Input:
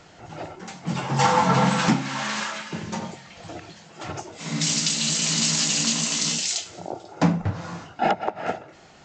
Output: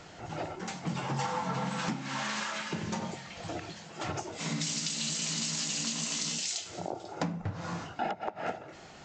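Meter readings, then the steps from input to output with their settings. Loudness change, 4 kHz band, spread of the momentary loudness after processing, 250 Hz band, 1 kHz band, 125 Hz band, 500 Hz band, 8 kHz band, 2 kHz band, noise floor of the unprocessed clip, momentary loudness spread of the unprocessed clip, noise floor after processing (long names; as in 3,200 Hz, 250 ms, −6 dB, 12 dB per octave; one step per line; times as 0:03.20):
−11.0 dB, −9.5 dB, 9 LU, −10.5 dB, −11.0 dB, −10.5 dB, −9.0 dB, −10.0 dB, −8.5 dB, −50 dBFS, 18 LU, −50 dBFS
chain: downward compressor 6 to 1, threshold −31 dBFS, peak gain reduction 16 dB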